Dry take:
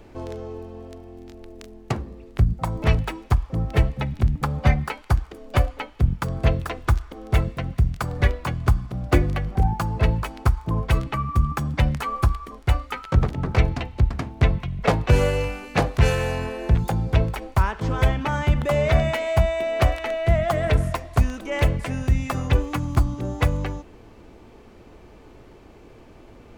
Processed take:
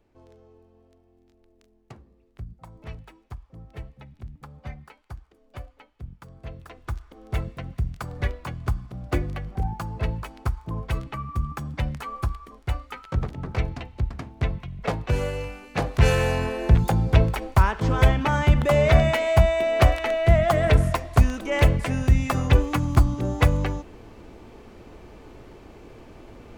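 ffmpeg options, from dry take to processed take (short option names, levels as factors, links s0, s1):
-af "volume=1.26,afade=t=in:st=6.46:d=0.99:silence=0.237137,afade=t=in:st=15.74:d=0.43:silence=0.354813"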